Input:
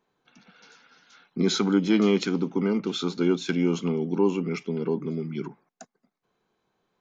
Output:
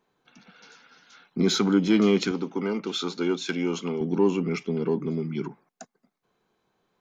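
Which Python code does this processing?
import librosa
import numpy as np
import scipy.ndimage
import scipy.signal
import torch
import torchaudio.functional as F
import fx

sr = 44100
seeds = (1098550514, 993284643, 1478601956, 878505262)

p1 = fx.highpass(x, sr, hz=410.0, slope=6, at=(2.31, 4.01))
p2 = np.clip(p1, -10.0 ** (-26.0 / 20.0), 10.0 ** (-26.0 / 20.0))
y = p1 + (p2 * 10.0 ** (-12.0 / 20.0))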